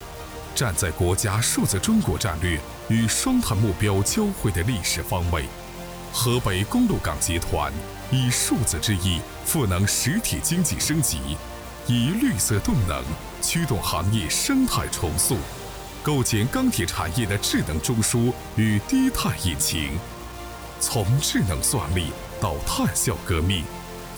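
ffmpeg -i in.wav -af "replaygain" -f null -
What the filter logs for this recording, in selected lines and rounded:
track_gain = +5.4 dB
track_peak = 0.243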